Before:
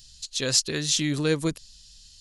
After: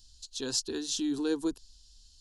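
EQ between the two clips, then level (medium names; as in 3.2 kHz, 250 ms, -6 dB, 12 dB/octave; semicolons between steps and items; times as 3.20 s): peaking EQ 1.2 kHz -11 dB 0.25 oct; treble shelf 4.8 kHz -9.5 dB; static phaser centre 570 Hz, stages 6; -2.0 dB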